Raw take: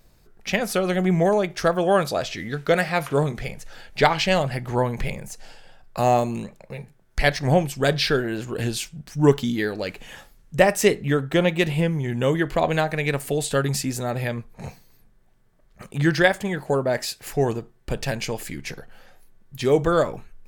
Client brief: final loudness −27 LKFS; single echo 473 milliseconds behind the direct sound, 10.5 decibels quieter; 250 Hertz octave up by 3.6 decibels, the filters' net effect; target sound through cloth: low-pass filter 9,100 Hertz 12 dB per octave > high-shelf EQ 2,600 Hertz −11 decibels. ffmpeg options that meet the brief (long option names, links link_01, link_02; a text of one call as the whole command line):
ffmpeg -i in.wav -af "lowpass=9100,equalizer=frequency=250:width_type=o:gain=5.5,highshelf=frequency=2600:gain=-11,aecho=1:1:473:0.299,volume=-5dB" out.wav